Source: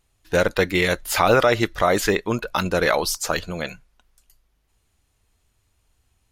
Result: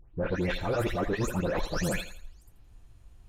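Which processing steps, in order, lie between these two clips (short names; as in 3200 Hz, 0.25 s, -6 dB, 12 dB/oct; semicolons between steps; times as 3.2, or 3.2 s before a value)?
spectral delay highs late, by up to 0.471 s; tilt -2.5 dB/oct; notch 2100 Hz, Q 25; reverse; compressor 16:1, threshold -30 dBFS, peak gain reduction 20.5 dB; reverse; soft clip -26 dBFS, distortion -20 dB; time stretch by phase-locked vocoder 0.52×; on a send: thinning echo 83 ms, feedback 33%, high-pass 160 Hz, level -11.5 dB; on the sum: gain +7 dB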